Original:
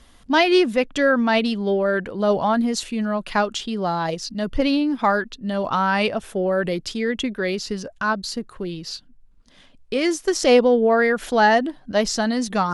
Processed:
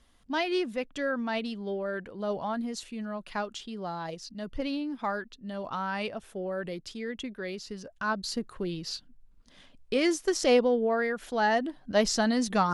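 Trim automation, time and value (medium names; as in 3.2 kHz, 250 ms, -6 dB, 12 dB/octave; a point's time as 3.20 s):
7.75 s -12.5 dB
8.37 s -4 dB
9.95 s -4 dB
11.26 s -12 dB
12.01 s -4 dB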